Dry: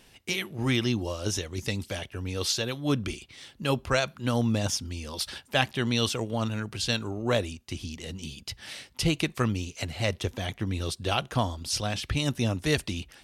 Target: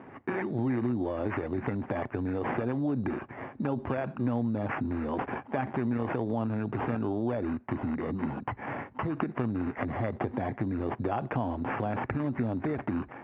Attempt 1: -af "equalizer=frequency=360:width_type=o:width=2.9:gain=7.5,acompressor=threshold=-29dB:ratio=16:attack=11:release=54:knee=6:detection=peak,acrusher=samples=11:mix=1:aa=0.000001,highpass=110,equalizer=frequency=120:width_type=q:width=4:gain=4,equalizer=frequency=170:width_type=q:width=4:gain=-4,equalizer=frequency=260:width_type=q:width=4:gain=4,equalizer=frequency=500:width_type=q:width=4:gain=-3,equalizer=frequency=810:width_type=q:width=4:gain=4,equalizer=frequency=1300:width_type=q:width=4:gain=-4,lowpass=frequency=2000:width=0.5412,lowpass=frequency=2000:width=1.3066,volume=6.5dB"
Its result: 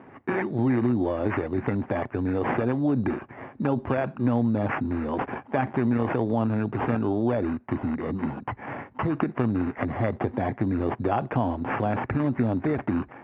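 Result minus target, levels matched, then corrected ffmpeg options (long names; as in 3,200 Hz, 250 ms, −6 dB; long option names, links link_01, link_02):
downward compressor: peak gain reduction −6 dB
-af "equalizer=frequency=360:width_type=o:width=2.9:gain=7.5,acompressor=threshold=-35.5dB:ratio=16:attack=11:release=54:knee=6:detection=peak,acrusher=samples=11:mix=1:aa=0.000001,highpass=110,equalizer=frequency=120:width_type=q:width=4:gain=4,equalizer=frequency=170:width_type=q:width=4:gain=-4,equalizer=frequency=260:width_type=q:width=4:gain=4,equalizer=frequency=500:width_type=q:width=4:gain=-3,equalizer=frequency=810:width_type=q:width=4:gain=4,equalizer=frequency=1300:width_type=q:width=4:gain=-4,lowpass=frequency=2000:width=0.5412,lowpass=frequency=2000:width=1.3066,volume=6.5dB"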